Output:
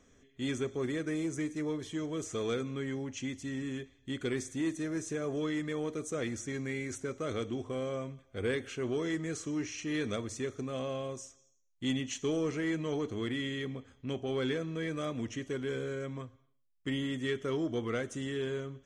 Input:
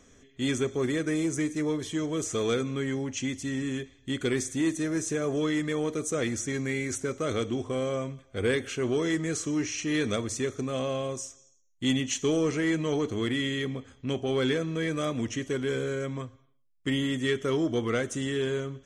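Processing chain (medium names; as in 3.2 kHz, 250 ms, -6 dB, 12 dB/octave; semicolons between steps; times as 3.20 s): treble shelf 6 kHz -6 dB; trim -6 dB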